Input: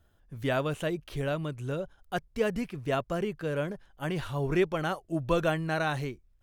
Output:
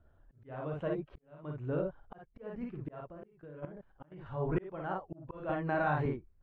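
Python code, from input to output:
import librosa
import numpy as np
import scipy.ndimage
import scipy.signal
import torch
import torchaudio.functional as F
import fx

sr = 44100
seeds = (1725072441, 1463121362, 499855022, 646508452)

y = fx.spec_quant(x, sr, step_db=15)
y = scipy.signal.sosfilt(scipy.signal.butter(2, 1400.0, 'lowpass', fs=sr, output='sos'), y)
y = fx.room_early_taps(y, sr, ms=(33, 54), db=(-9.5, -3.5))
y = fx.auto_swell(y, sr, attack_ms=747.0)
y = fx.level_steps(y, sr, step_db=16, at=(3.08, 4.26))
y = fx.dynamic_eq(y, sr, hz=930.0, q=1.9, threshold_db=-54.0, ratio=4.0, max_db=4)
y = fx.auto_swell(y, sr, attack_ms=684.0, at=(1.03, 1.43), fade=0.02)
y = fx.band_squash(y, sr, depth_pct=70, at=(5.49, 6.06))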